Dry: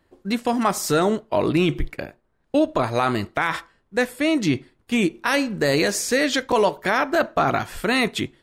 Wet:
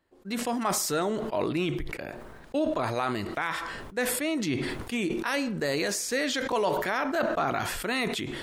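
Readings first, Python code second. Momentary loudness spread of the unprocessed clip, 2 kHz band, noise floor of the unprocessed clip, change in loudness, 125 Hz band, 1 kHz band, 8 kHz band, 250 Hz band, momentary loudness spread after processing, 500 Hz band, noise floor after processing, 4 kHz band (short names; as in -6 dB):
6 LU, -7.0 dB, -66 dBFS, -7.0 dB, -8.0 dB, -7.0 dB, -2.5 dB, -8.0 dB, 7 LU, -7.0 dB, -47 dBFS, -6.0 dB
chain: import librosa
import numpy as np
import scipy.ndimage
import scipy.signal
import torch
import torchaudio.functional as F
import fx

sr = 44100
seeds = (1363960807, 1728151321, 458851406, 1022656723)

y = fx.low_shelf(x, sr, hz=190.0, db=-5.5)
y = fx.sustainer(y, sr, db_per_s=29.0)
y = y * 10.0 ** (-8.0 / 20.0)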